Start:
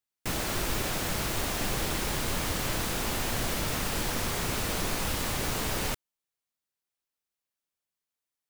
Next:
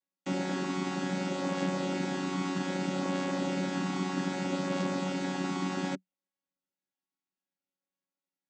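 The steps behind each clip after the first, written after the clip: chord vocoder bare fifth, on F#3; gain +1.5 dB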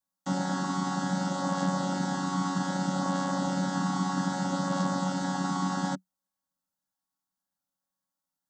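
fixed phaser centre 1000 Hz, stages 4; gain +7 dB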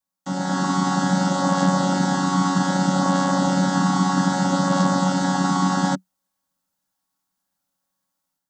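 AGC gain up to 8 dB; gain +1.5 dB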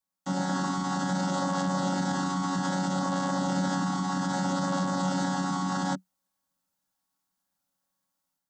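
limiter -17.5 dBFS, peak gain reduction 9.5 dB; gain -3 dB

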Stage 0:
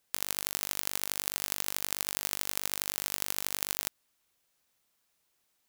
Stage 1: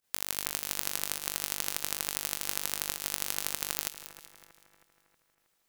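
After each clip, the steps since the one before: pump 101 bpm, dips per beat 1, -16 dB, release 77 ms; split-band echo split 2200 Hz, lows 0.318 s, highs 0.189 s, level -12.5 dB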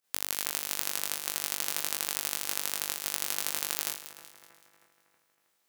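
spectral trails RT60 0.45 s; HPF 230 Hz 6 dB/oct; gain -1 dB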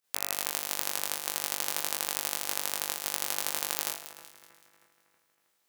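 de-hum 77.02 Hz, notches 35; dynamic EQ 720 Hz, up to +6 dB, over -59 dBFS, Q 1.1

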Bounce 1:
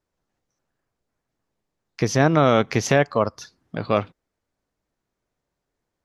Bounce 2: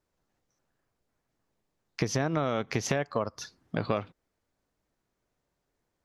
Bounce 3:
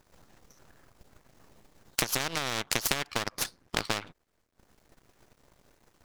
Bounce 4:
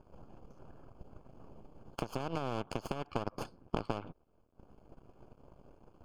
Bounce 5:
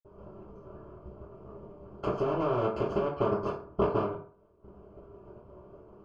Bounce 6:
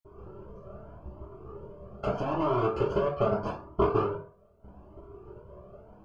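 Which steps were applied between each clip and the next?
compressor 12:1, threshold -24 dBFS, peak gain reduction 13 dB
transient shaper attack +8 dB, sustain -12 dB; half-wave rectifier; spectral compressor 4:1; gain -1 dB
compressor 5:1, threshold -32 dBFS, peak gain reduction 10.5 dB; running mean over 23 samples; gain +6.5 dB
reverb RT60 0.45 s, pre-delay 46 ms; gain +7.5 dB
cascading flanger rising 0.8 Hz; gain +6.5 dB

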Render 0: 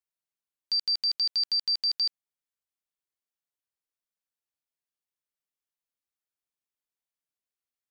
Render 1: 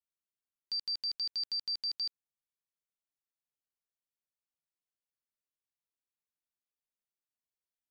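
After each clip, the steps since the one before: low shelf 370 Hz +5 dB; gain -8.5 dB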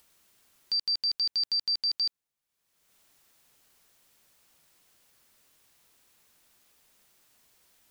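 upward compressor, threshold -53 dBFS; gain +7 dB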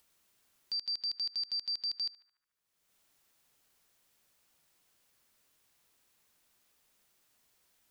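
narrowing echo 73 ms, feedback 79%, band-pass 1400 Hz, level -14.5 dB; gain -7 dB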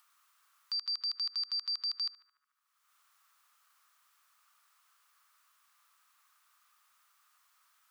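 resonant high-pass 1200 Hz, resonance Q 6.2

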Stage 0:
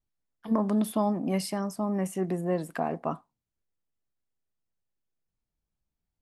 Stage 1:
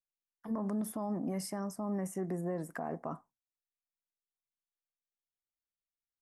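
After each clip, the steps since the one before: limiter -23 dBFS, peak gain reduction 9.5 dB; band shelf 3300 Hz -12.5 dB 1.1 oct; gate with hold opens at -52 dBFS; gain -4.5 dB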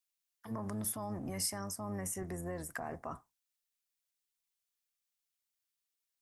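octaver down 1 oct, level -3 dB; tilt shelf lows -8 dB, about 1300 Hz; gain +1 dB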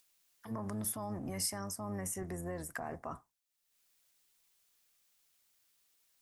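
upward compressor, threshold -59 dBFS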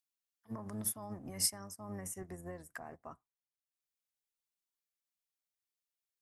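upward expander 2.5:1, over -50 dBFS; gain +5 dB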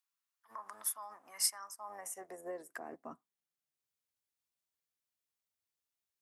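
high-pass sweep 1100 Hz -> 73 Hz, 1.66–4.25

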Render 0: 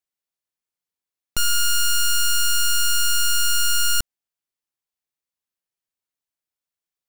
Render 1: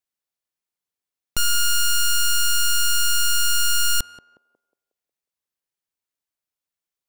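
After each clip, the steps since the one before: narrowing echo 0.181 s, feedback 46%, band-pass 510 Hz, level -11 dB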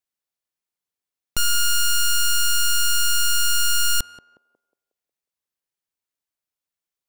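nothing audible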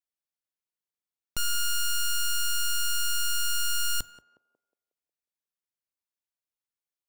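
reverb, pre-delay 3 ms, DRR 18.5 dB; gain -8 dB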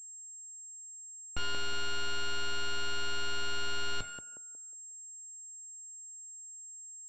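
wavefolder -28.5 dBFS; notch 1200 Hz, Q 15; pulse-width modulation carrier 7500 Hz; gain +7.5 dB

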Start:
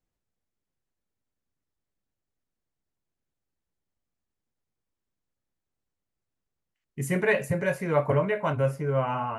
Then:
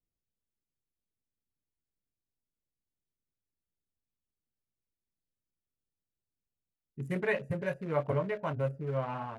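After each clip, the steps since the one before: Wiener smoothing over 41 samples; gain -6.5 dB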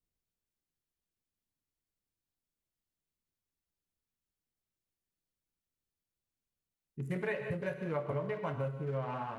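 non-linear reverb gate 0.22 s flat, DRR 7.5 dB; compressor 3:1, threshold -33 dBFS, peak gain reduction 7.5 dB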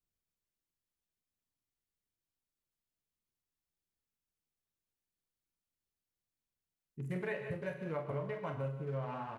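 doubler 44 ms -9 dB; gain -3.5 dB

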